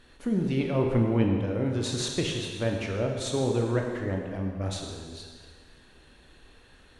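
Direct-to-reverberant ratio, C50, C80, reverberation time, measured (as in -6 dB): 1.0 dB, 3.0 dB, 4.0 dB, 1.7 s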